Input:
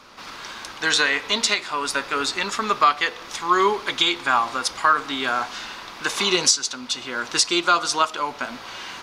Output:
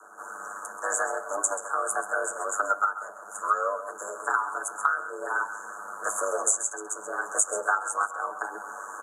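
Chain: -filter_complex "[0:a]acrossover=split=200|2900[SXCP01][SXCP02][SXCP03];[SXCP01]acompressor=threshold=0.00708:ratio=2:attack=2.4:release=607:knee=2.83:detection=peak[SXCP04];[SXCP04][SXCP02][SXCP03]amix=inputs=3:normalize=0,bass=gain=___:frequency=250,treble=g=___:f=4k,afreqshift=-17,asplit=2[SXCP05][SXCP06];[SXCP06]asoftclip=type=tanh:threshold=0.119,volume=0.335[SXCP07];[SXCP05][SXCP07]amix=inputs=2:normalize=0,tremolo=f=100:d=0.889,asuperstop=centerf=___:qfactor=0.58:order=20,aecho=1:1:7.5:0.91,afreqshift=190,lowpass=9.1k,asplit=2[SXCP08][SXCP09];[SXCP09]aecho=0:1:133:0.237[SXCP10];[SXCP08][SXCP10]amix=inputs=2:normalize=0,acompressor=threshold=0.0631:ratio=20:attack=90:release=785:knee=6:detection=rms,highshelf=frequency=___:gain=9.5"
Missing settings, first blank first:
-10, -3, 3100, 4.1k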